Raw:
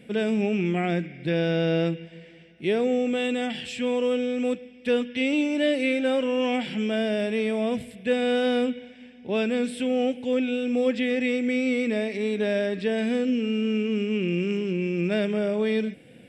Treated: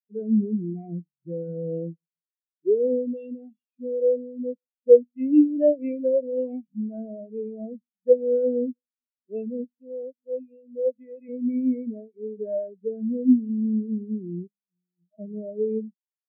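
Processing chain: 9.64–11.29 HPF 370 Hz 6 dB/oct; 14.47–15.19 octave resonator D#, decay 0.2 s; spectral expander 4:1; gain +8.5 dB

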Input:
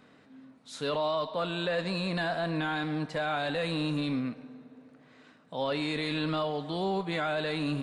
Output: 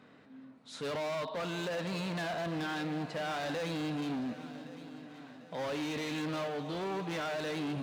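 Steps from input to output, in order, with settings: high shelf 6100 Hz -9 dB; overloaded stage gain 33.5 dB; HPF 66 Hz; multi-head echo 0.373 s, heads second and third, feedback 46%, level -17 dB

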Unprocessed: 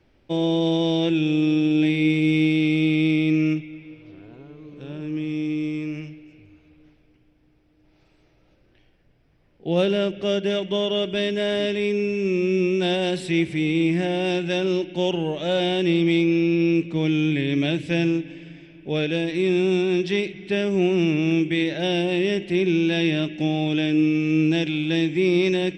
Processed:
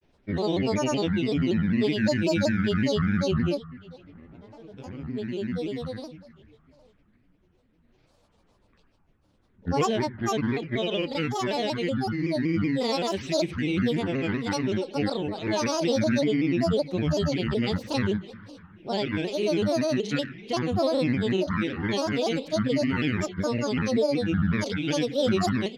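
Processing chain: grains, grains 20/s, spray 27 ms, pitch spread up and down by 12 st; shaped vibrato saw down 5.3 Hz, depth 100 cents; gain -3 dB

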